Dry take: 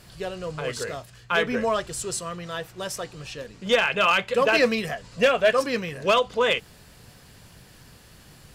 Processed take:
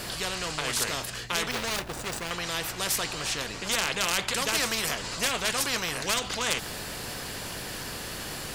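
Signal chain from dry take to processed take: 1.51–2.31 s: median filter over 41 samples; spectrum-flattening compressor 4:1; trim +2 dB

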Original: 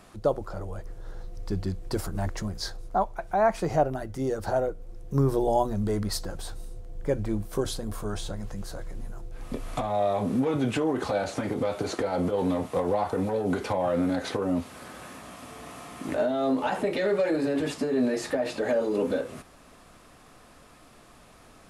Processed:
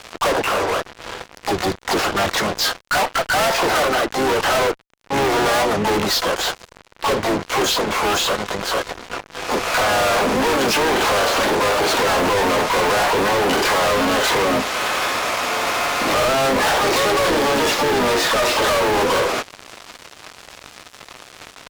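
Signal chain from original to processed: high-pass 110 Hz 6 dB/octave; three-band isolator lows -21 dB, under 400 Hz, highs -18 dB, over 5.2 kHz; harmony voices -4 st -7 dB, +5 st -15 dB, +12 st -3 dB; resampled via 16 kHz; fuzz box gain 45 dB, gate -50 dBFS; trim -3 dB

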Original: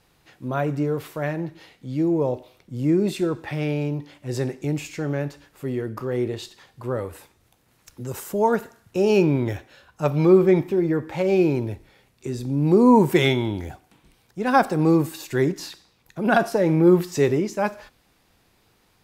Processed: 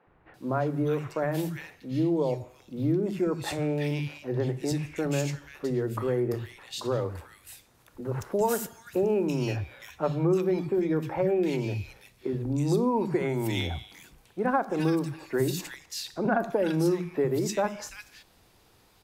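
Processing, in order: compression 5:1, threshold -24 dBFS, peak gain reduction 13 dB; three bands offset in time mids, lows, highs 70/340 ms, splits 200/2000 Hz; trim +2 dB

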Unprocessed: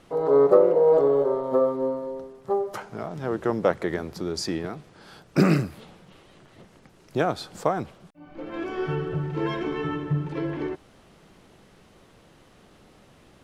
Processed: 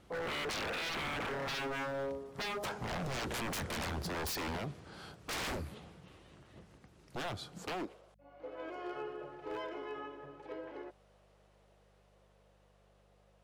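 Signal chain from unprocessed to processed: Doppler pass-by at 3.48 s, 15 m/s, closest 16 m; high-pass sweep 67 Hz -> 540 Hz, 7.24–8.04 s; wavefolder -35 dBFS; mains buzz 50 Hz, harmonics 4, -71 dBFS -4 dB/octave; trim +2 dB

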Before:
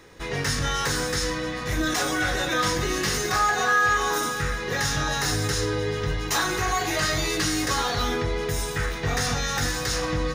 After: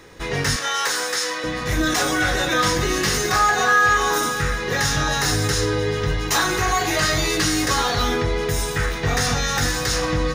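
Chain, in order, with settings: 0.56–1.44 s: high-pass 550 Hz 12 dB/octave; trim +4.5 dB

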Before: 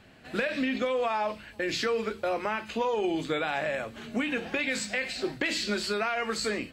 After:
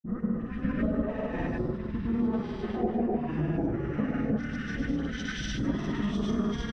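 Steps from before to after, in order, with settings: slices played last to first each 109 ms, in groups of 4; tilt EQ -4 dB/octave; feedback delay 152 ms, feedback 54%, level -5 dB; formant shift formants -5 st; phase dispersion highs, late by 55 ms, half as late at 2.4 kHz; phase shifter stages 2, 1.5 Hz, lowest notch 370–3200 Hz; gated-style reverb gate 270 ms rising, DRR -6.5 dB; granulator, pitch spread up and down by 0 st; compression 3:1, threshold -21 dBFS, peak gain reduction 5.5 dB; three bands expanded up and down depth 70%; trim -4.5 dB

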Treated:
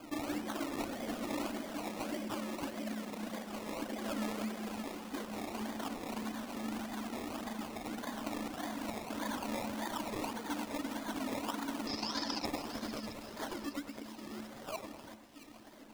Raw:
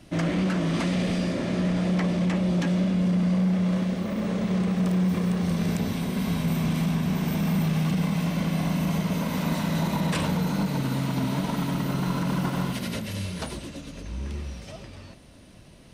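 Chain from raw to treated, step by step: 5.44–6.28 s: comb filter that takes the minimum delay 0.94 ms; reverb removal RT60 1.8 s; in parallel at +2 dB: compression, threshold -41 dBFS, peak gain reduction 17 dB; on the sum: peak limiter -24.5 dBFS, peak gain reduction 9 dB; rippled Chebyshev high-pass 210 Hz, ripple 9 dB; decimation with a swept rate 23×, swing 60% 1.7 Hz; 11.87–12.45 s: resonant low-pass 5.1 kHz, resonance Q 14; on a send: two-band feedback delay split 2.1 kHz, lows 100 ms, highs 672 ms, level -11.5 dB; on the sum: trim +1 dB

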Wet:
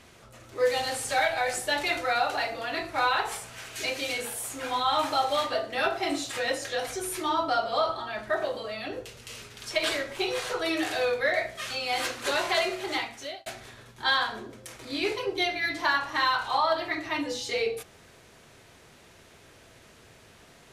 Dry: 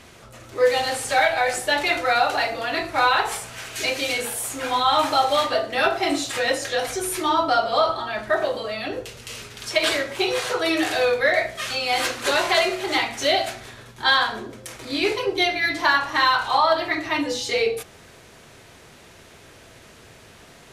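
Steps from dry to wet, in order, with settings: 0.59–2.06 s: tone controls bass +2 dB, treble +3 dB; 9.69–10.64 s: added noise brown -52 dBFS; 12.87–13.46 s: fade out; trim -6.5 dB

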